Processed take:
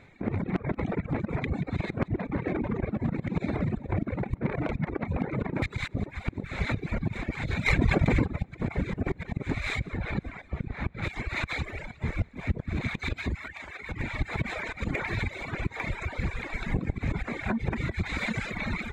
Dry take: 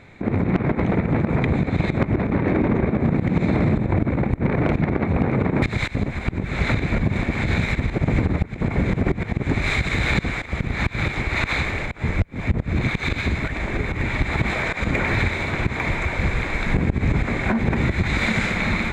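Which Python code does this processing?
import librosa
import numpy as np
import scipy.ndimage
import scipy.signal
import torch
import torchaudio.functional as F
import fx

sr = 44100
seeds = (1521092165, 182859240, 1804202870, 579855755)

y = fx.lowpass(x, sr, hz=1200.0, slope=6, at=(9.79, 11.02), fade=0.02)
y = fx.dereverb_blind(y, sr, rt60_s=0.83)
y = fx.highpass(y, sr, hz=910.0, slope=12, at=(13.35, 13.89))
y = fx.echo_feedback(y, sr, ms=181, feedback_pct=57, wet_db=-12.5)
y = fx.dereverb_blind(y, sr, rt60_s=0.97)
y = fx.env_flatten(y, sr, amount_pct=100, at=(7.65, 8.23), fade=0.02)
y = F.gain(torch.from_numpy(y), -6.5).numpy()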